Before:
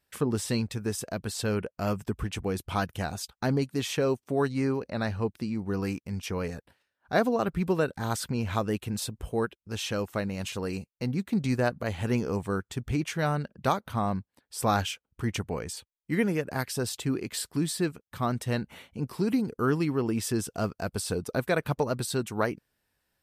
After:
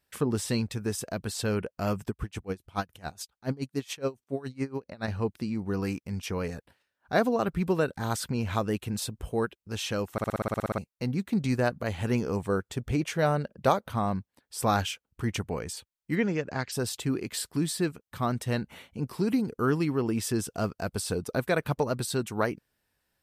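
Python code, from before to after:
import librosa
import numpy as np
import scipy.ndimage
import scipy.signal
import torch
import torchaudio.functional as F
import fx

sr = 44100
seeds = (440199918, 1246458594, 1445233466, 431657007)

y = fx.tremolo_db(x, sr, hz=7.1, depth_db=24, at=(2.09, 5.08))
y = fx.peak_eq(y, sr, hz=540.0, db=6.5, octaves=0.77, at=(12.49, 13.9))
y = fx.ellip_lowpass(y, sr, hz=7200.0, order=4, stop_db=40, at=(16.15, 16.71), fade=0.02)
y = fx.edit(y, sr, fx.stutter_over(start_s=10.12, slice_s=0.06, count=11), tone=tone)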